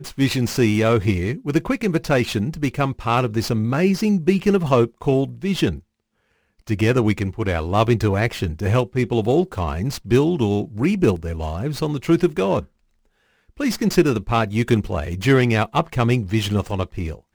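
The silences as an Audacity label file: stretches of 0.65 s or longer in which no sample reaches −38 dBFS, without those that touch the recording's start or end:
5.790000	6.670000	silence
12.650000	13.580000	silence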